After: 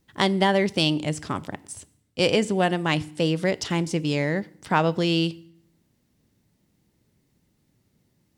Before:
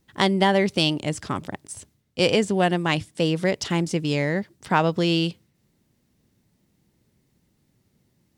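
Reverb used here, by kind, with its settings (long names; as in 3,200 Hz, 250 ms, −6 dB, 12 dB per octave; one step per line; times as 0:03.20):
feedback delay network reverb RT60 0.6 s, low-frequency decay 1.4×, high-frequency decay 0.95×, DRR 17.5 dB
level −1 dB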